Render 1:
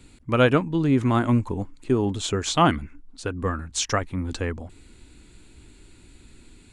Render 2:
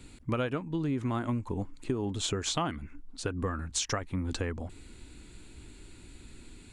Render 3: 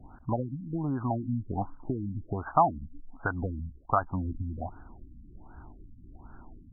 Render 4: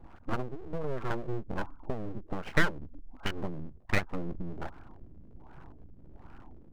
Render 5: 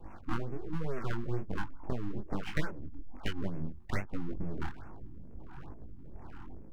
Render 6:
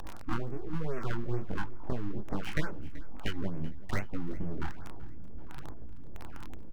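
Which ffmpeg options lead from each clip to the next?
ffmpeg -i in.wav -af "acompressor=threshold=-28dB:ratio=8" out.wav
ffmpeg -i in.wav -af "lowshelf=frequency=600:width_type=q:width=3:gain=-7.5,afftfilt=real='re*lt(b*sr/1024,280*pow(1700/280,0.5+0.5*sin(2*PI*1.3*pts/sr)))':imag='im*lt(b*sr/1024,280*pow(1700/280,0.5+0.5*sin(2*PI*1.3*pts/sr)))':win_size=1024:overlap=0.75,volume=9dB" out.wav
ffmpeg -i in.wav -af "aeval=exprs='abs(val(0))':channel_layout=same" out.wav
ffmpeg -i in.wav -filter_complex "[0:a]acrossover=split=380|1000[link_01][link_02][link_03];[link_01]acompressor=threshold=-32dB:ratio=4[link_04];[link_02]acompressor=threshold=-50dB:ratio=4[link_05];[link_03]acompressor=threshold=-43dB:ratio=4[link_06];[link_04][link_05][link_06]amix=inputs=3:normalize=0,flanger=delay=18.5:depth=7.5:speed=1.2,afftfilt=real='re*(1-between(b*sr/1024,490*pow(4000/490,0.5+0.5*sin(2*PI*2.3*pts/sr))/1.41,490*pow(4000/490,0.5+0.5*sin(2*PI*2.3*pts/sr))*1.41))':imag='im*(1-between(b*sr/1024,490*pow(4000/490,0.5+0.5*sin(2*PI*2.3*pts/sr))/1.41,490*pow(4000/490,0.5+0.5*sin(2*PI*2.3*pts/sr))*1.41))':win_size=1024:overlap=0.75,volume=6.5dB" out.wav
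ffmpeg -i in.wav -af "aeval=exprs='val(0)+0.5*0.02*sgn(val(0))':channel_layout=same,aecho=1:1:382|764|1146:0.112|0.0494|0.0217,volume=1dB" out.wav

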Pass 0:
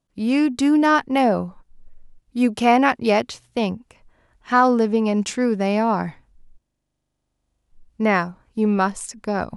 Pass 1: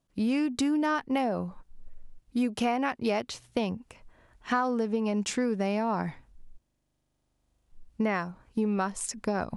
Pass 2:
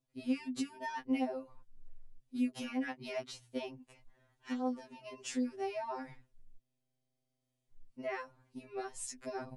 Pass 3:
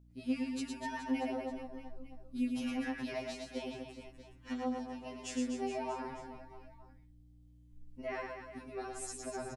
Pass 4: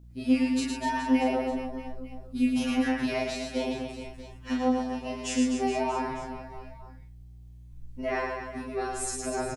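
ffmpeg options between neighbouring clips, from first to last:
ffmpeg -i in.wav -af "acompressor=threshold=-25dB:ratio=6" out.wav
ffmpeg -i in.wav -af "equalizer=frequency=1200:width_type=o:width=0.66:gain=-4.5,afftfilt=real='re*2.45*eq(mod(b,6),0)':imag='im*2.45*eq(mod(b,6),0)':win_size=2048:overlap=0.75,volume=-6.5dB" out.wav
ffmpeg -i in.wav -af "aeval=exprs='val(0)+0.00126*(sin(2*PI*60*n/s)+sin(2*PI*2*60*n/s)/2+sin(2*PI*3*60*n/s)/3+sin(2*PI*4*60*n/s)/4+sin(2*PI*5*60*n/s)/5)':channel_layout=same,aecho=1:1:110|247.5|419.4|634.2|902.8:0.631|0.398|0.251|0.158|0.1,volume=-1.5dB" out.wav
ffmpeg -i in.wav -filter_complex "[0:a]asplit=2[link_01][link_02];[link_02]adelay=35,volume=-2.5dB[link_03];[link_01][link_03]amix=inputs=2:normalize=0,volume=8.5dB" out.wav

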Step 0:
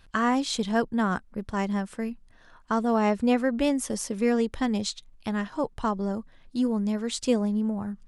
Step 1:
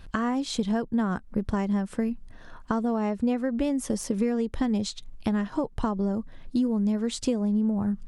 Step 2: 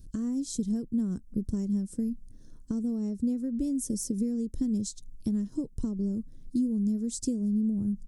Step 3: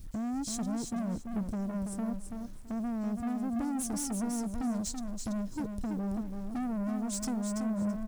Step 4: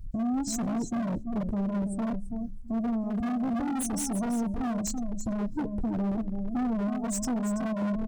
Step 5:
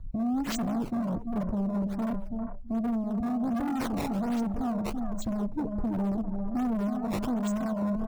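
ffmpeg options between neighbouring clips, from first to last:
ffmpeg -i in.wav -af "acompressor=threshold=-33dB:ratio=6,tiltshelf=frequency=630:gain=4,deesser=0.75,volume=7.5dB" out.wav
ffmpeg -i in.wav -af "firequalizer=gain_entry='entry(300,0);entry(760,-25);entry(2700,-22);entry(5500,1);entry(8000,5)':delay=0.05:min_phase=1,volume=-2.5dB" out.wav
ffmpeg -i in.wav -af "asoftclip=type=tanh:threshold=-35.5dB,acrusher=bits=10:mix=0:aa=0.000001,aecho=1:1:332|664|996:0.501|0.1|0.02,volume=3.5dB" out.wav
ffmpeg -i in.wav -af "bandreject=frequency=70.55:width_type=h:width=4,bandreject=frequency=141.1:width_type=h:width=4,bandreject=frequency=211.65:width_type=h:width=4,bandreject=frequency=282.2:width_type=h:width=4,bandreject=frequency=352.75:width_type=h:width=4,bandreject=frequency=423.3:width_type=h:width=4,bandreject=frequency=493.85:width_type=h:width=4,bandreject=frequency=564.4:width_type=h:width=4,bandreject=frequency=634.95:width_type=h:width=4,bandreject=frequency=705.5:width_type=h:width=4,bandreject=frequency=776.05:width_type=h:width=4,bandreject=frequency=846.6:width_type=h:width=4,bandreject=frequency=917.15:width_type=h:width=4,bandreject=frequency=987.7:width_type=h:width=4,bandreject=frequency=1058.25:width_type=h:width=4,bandreject=frequency=1128.8:width_type=h:width=4,bandreject=frequency=1199.35:width_type=h:width=4,bandreject=frequency=1269.9:width_type=h:width=4,bandreject=frequency=1340.45:width_type=h:width=4,bandreject=frequency=1411:width_type=h:width=4,bandreject=frequency=1481.55:width_type=h:width=4,bandreject=frequency=1552.1:width_type=h:width=4,bandreject=frequency=1622.65:width_type=h:width=4,bandreject=frequency=1693.2:width_type=h:width=4,bandreject=frequency=1763.75:width_type=h:width=4,bandreject=frequency=1834.3:width_type=h:width=4,bandreject=frequency=1904.85:width_type=h:width=4,bandreject=frequency=1975.4:width_type=h:width=4,bandreject=frequency=2045.95:width_type=h:width=4,bandreject=frequency=2116.5:width_type=h:width=4,bandreject=frequency=2187.05:width_type=h:width=4,afftdn=noise_reduction=23:noise_floor=-40,aeval=exprs='0.0266*(abs(mod(val(0)/0.0266+3,4)-2)-1)':channel_layout=same,volume=6.5dB" out.wav
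ffmpeg -i in.wav -filter_complex "[0:a]acrossover=split=530|1500[link_01][link_02][link_03];[link_02]aecho=1:1:399:0.596[link_04];[link_03]acrusher=samples=16:mix=1:aa=0.000001:lfo=1:lforange=25.6:lforate=1.3[link_05];[link_01][link_04][link_05]amix=inputs=3:normalize=0" out.wav

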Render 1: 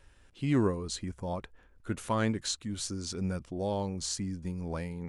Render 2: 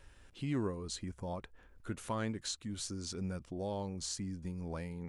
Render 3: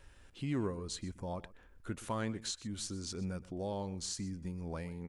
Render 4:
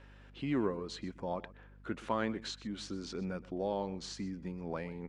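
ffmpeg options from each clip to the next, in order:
ffmpeg -i in.wav -af "acompressor=threshold=-49dB:ratio=1.5,volume=1dB" out.wav
ffmpeg -i in.wav -af "aecho=1:1:124:0.119" out.wav
ffmpeg -i in.wav -af "highpass=210,lowpass=3300,aeval=exprs='val(0)+0.001*(sin(2*PI*50*n/s)+sin(2*PI*2*50*n/s)/2+sin(2*PI*3*50*n/s)/3+sin(2*PI*4*50*n/s)/4+sin(2*PI*5*50*n/s)/5)':channel_layout=same,volume=4.5dB" out.wav

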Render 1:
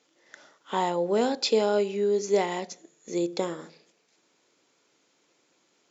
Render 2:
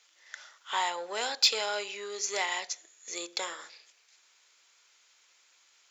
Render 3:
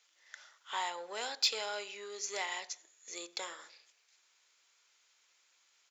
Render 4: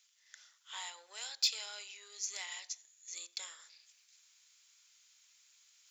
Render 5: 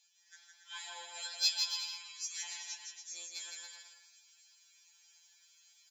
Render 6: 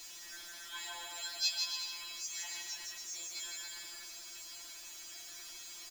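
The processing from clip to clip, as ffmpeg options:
ffmpeg -i in.wav -filter_complex "[0:a]asplit=2[link_01][link_02];[link_02]asoftclip=type=tanh:threshold=-22dB,volume=-5dB[link_03];[link_01][link_03]amix=inputs=2:normalize=0,highpass=1400,volume=2.5dB" out.wav
ffmpeg -i in.wav -filter_complex "[0:a]asplit=2[link_01][link_02];[link_02]adelay=91,lowpass=frequency=2000:poles=1,volume=-22dB,asplit=2[link_03][link_04];[link_04]adelay=91,lowpass=frequency=2000:poles=1,volume=0.47,asplit=2[link_05][link_06];[link_06]adelay=91,lowpass=frequency=2000:poles=1,volume=0.47[link_07];[link_01][link_03][link_05][link_07]amix=inputs=4:normalize=0,volume=-6.5dB" out.wav
ffmpeg -i in.wav -af "highshelf=frequency=8300:gain=-7,areverse,acompressor=mode=upward:threshold=-59dB:ratio=2.5,areverse,aderivative,volume=4.5dB" out.wav
ffmpeg -i in.wav -filter_complex "[0:a]aecho=1:1:4.6:0.74,asplit=2[link_01][link_02];[link_02]aecho=0:1:160|280|370|437.5|488.1:0.631|0.398|0.251|0.158|0.1[link_03];[link_01][link_03]amix=inputs=2:normalize=0,afftfilt=real='re*2.83*eq(mod(b,8),0)':imag='im*2.83*eq(mod(b,8),0)':win_size=2048:overlap=0.75" out.wav
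ffmpeg -i in.wav -af "aeval=exprs='val(0)+0.5*0.00891*sgn(val(0))':channel_layout=same,aecho=1:1:3.1:0.69,volume=-4.5dB" out.wav

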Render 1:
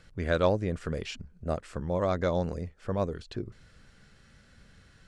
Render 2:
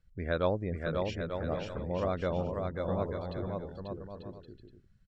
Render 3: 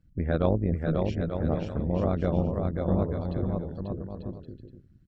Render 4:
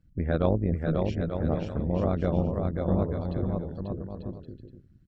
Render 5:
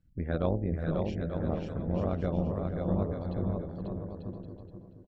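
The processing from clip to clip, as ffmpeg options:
ffmpeg -i in.wav -filter_complex "[0:a]afftdn=noise_reduction=20:noise_floor=-45,asplit=2[link_01][link_02];[link_02]aecho=0:1:540|891|1119|1267|1364:0.631|0.398|0.251|0.158|0.1[link_03];[link_01][link_03]amix=inputs=2:normalize=0,volume=-4.5dB" out.wav
ffmpeg -i in.wav -af "equalizer=frequency=140:width=0.34:gain=13.5,tremolo=f=150:d=0.667" out.wav
ffmpeg -i in.wav -af anull out.wav
ffmpeg -i in.wav -filter_complex "[0:a]bandreject=frequency=73.76:width_type=h:width=4,bandreject=frequency=147.52:width_type=h:width=4,bandreject=frequency=221.28:width_type=h:width=4,bandreject=frequency=295.04:width_type=h:width=4,bandreject=frequency=368.8:width_type=h:width=4,bandreject=frequency=442.56:width_type=h:width=4,bandreject=frequency=516.32:width_type=h:width=4,bandreject=frequency=590.08:width_type=h:width=4,bandreject=frequency=663.84:width_type=h:width=4,bandreject=frequency=737.6:width_type=h:width=4,bandreject=frequency=811.36:width_type=h:width=4,bandreject=frequency=885.12:width_type=h:width=4,asplit=2[link_01][link_02];[link_02]adelay=479,lowpass=frequency=1900:poles=1,volume=-8dB,asplit=2[link_03][link_04];[link_04]adelay=479,lowpass=frequency=1900:poles=1,volume=0.33,asplit=2[link_05][link_06];[link_06]adelay=479,lowpass=frequency=1900:poles=1,volume=0.33,asplit=2[link_07][link_08];[link_08]adelay=479,lowpass=frequency=1900:poles=1,volume=0.33[link_09];[link_03][link_05][link_07][link_09]amix=inputs=4:normalize=0[link_10];[link_01][link_10]amix=inputs=2:normalize=0,volume=-4.5dB" out.wav

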